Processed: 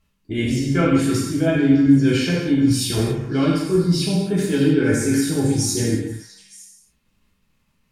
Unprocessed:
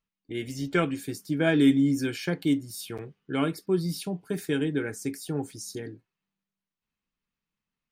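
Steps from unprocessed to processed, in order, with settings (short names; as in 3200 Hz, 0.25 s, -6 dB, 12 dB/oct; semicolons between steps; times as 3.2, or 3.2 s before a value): in parallel at +1.5 dB: level quantiser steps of 22 dB; on the sum: low shelf 230 Hz +11 dB; treble ducked by the level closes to 2400 Hz, closed at -10 dBFS; reverse; compressor 5:1, threshold -28 dBFS, peak gain reduction 18.5 dB; reverse; delay with a stepping band-pass 0.305 s, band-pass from 1300 Hz, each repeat 1.4 oct, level -10 dB; non-linear reverb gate 0.31 s falling, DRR -6.5 dB; gain +6.5 dB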